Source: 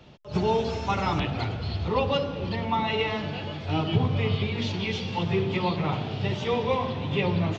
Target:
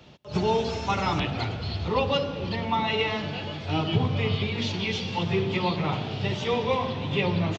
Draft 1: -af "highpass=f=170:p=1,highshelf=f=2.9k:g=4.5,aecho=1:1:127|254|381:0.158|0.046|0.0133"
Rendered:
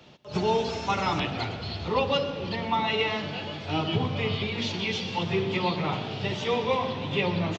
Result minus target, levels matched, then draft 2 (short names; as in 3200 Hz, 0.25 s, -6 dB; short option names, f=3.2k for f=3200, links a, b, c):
echo-to-direct +10.5 dB; 125 Hz band -3.0 dB
-af "highpass=f=50:p=1,highshelf=f=2.9k:g=4.5,aecho=1:1:127|254:0.0473|0.0137"